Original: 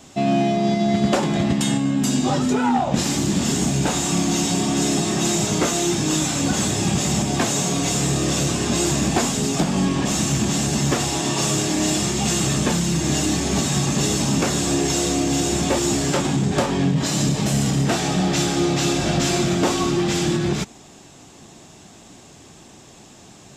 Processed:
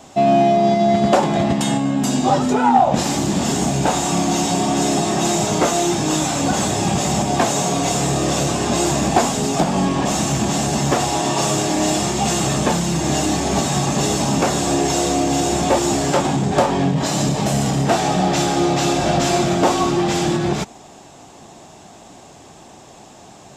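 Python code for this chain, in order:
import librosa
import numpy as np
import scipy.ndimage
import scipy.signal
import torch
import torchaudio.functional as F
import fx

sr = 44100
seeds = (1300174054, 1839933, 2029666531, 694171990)

y = fx.peak_eq(x, sr, hz=750.0, db=9.0, octaves=1.3)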